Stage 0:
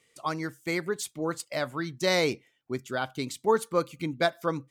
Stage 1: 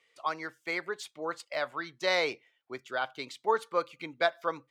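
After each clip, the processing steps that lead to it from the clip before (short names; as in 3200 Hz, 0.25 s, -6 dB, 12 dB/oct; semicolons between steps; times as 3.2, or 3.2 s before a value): three-band isolator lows -18 dB, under 460 Hz, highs -16 dB, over 4700 Hz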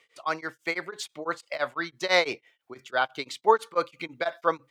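beating tremolo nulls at 6 Hz; gain +8 dB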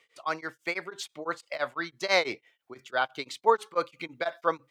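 record warp 45 rpm, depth 100 cents; gain -2 dB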